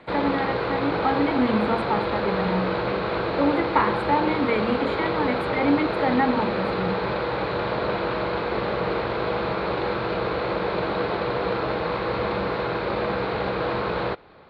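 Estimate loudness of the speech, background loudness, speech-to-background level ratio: -26.0 LUFS, -26.0 LUFS, 0.0 dB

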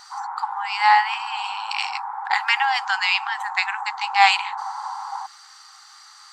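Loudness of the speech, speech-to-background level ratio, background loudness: -21.5 LUFS, 9.5 dB, -31.0 LUFS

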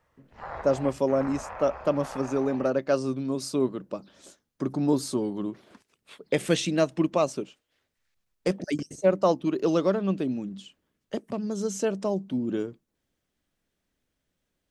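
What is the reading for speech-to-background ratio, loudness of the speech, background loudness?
13.5 dB, -27.5 LUFS, -41.0 LUFS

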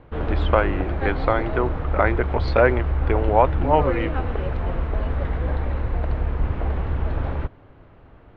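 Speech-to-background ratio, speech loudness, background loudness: 3.0 dB, -23.0 LUFS, -26.0 LUFS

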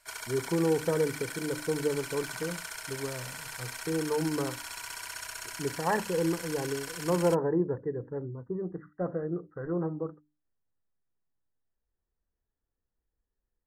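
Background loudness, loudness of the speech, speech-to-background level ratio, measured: -39.0 LUFS, -32.0 LUFS, 7.0 dB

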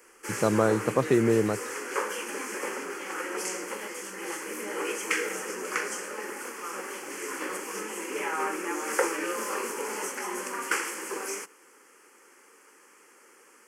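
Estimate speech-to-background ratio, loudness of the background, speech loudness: 7.0 dB, -32.5 LUFS, -25.5 LUFS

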